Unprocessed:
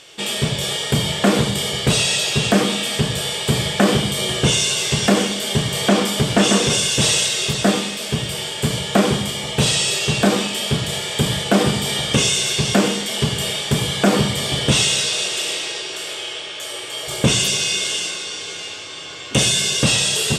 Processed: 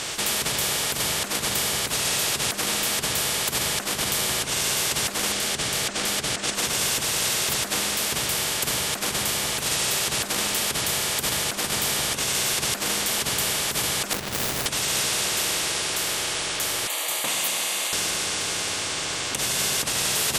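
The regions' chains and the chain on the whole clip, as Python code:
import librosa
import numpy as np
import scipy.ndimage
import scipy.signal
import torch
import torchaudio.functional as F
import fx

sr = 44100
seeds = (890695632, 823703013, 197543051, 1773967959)

y = fx.chain(x, sr, fx.lowpass(hz=6700.0, slope=12),
    fx.peak_eq(hz=990.0, db=-14.5, octaves=0.3), at=(5.32, 6.55))
y = fx.chain(y, sr, fx.median_filter(points=41),
    fx.sustainer(db_per_s=27.0), at=(14.13, 14.66))
y = fx.chain(y, sr, fx.highpass(hz=440.0, slope=24),
    fx.fixed_phaser(hz=1500.0, stages=6), at=(16.87, 17.93))
y = fx.low_shelf(y, sr, hz=230.0, db=2.5)
y = fx.over_compress(y, sr, threshold_db=-19.0, ratio=-0.5)
y = fx.spectral_comp(y, sr, ratio=4.0)
y = y * 10.0 ** (-2.5 / 20.0)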